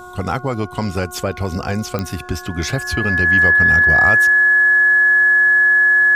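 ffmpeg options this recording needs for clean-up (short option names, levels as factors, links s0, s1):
-af "adeclick=t=4,bandreject=f=361.8:t=h:w=4,bandreject=f=723.6:t=h:w=4,bandreject=f=1085.4:t=h:w=4,bandreject=f=1447.2:t=h:w=4,bandreject=f=1700:w=30"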